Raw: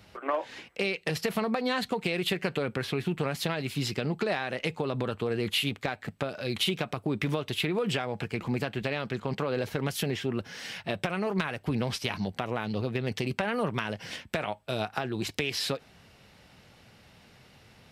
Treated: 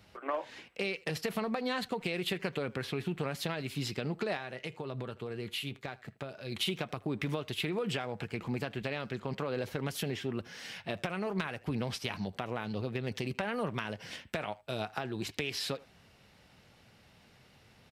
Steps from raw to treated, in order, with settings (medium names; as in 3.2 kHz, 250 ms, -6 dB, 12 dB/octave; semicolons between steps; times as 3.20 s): 4.37–6.52 s: feedback comb 130 Hz, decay 0.16 s, harmonics odd, mix 50%; speakerphone echo 80 ms, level -19 dB; trim -5 dB